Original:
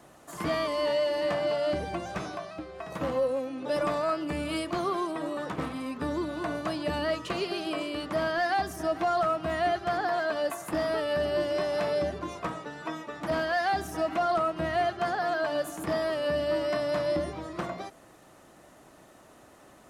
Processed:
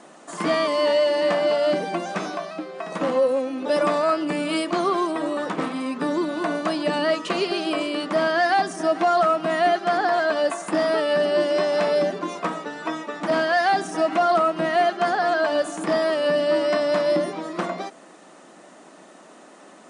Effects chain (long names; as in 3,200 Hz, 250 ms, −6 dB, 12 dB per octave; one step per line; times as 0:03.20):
linear-phase brick-wall band-pass 160–10,000 Hz
level +7.5 dB